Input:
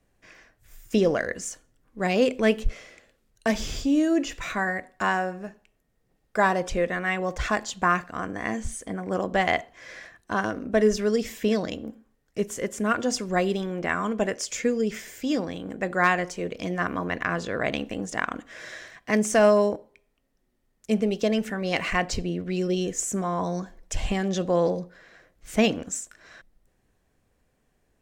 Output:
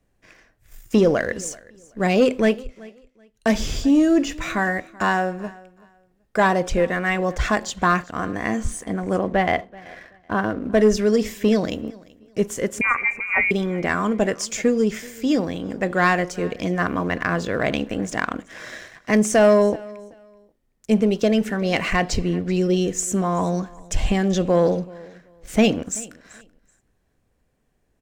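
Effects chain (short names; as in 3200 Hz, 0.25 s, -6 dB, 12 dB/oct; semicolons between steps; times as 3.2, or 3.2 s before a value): 9.17–10.64 air absorption 260 m; sample leveller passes 1; 12.81–13.51 inverted band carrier 2600 Hz; low shelf 450 Hz +3.5 dB; 2.44–3.47 dip -16.5 dB, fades 0.20 s; feedback echo 0.381 s, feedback 22%, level -22.5 dB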